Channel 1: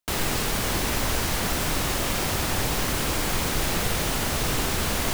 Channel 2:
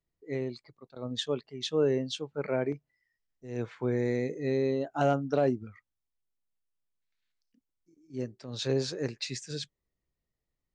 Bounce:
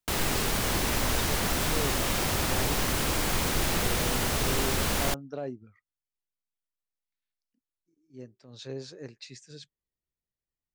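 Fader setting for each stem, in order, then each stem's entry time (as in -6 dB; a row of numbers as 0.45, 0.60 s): -2.0, -9.5 dB; 0.00, 0.00 s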